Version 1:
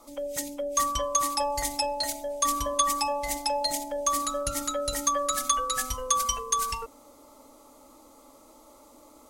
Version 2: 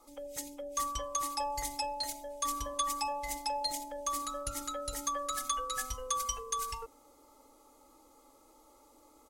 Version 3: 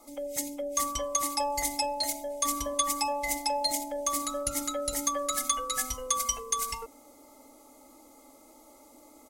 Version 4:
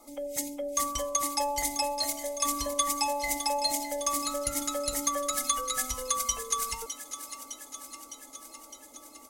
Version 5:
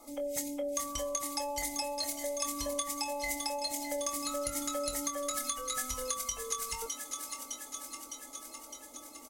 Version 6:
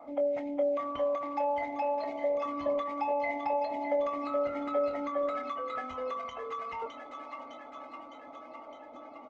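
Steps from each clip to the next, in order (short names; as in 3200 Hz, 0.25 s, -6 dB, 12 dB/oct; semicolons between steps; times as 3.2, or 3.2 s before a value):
comb 2.4 ms, depth 43%; gain -8.5 dB
high shelf 3800 Hz +9.5 dB; small resonant body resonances 240/630/2100 Hz, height 11 dB, ringing for 20 ms
thin delay 0.609 s, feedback 69%, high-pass 1600 Hz, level -10 dB
compressor, threshold -32 dBFS, peak gain reduction 10.5 dB; doubler 24 ms -9 dB
speaker cabinet 170–2200 Hz, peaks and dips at 180 Hz -8 dB, 390 Hz -9 dB, 690 Hz +10 dB, 1700 Hz -7 dB; gain +5.5 dB; Opus 16 kbps 48000 Hz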